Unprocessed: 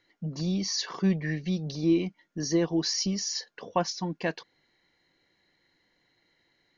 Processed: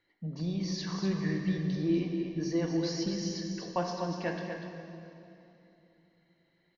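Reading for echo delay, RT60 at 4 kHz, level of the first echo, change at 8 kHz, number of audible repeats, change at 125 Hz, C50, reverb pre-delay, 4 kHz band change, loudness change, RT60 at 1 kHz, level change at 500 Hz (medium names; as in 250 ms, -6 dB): 243 ms, 2.5 s, -7.0 dB, no reading, 1, -2.0 dB, 2.0 dB, 9 ms, -8.5 dB, -4.0 dB, 2.8 s, -2.5 dB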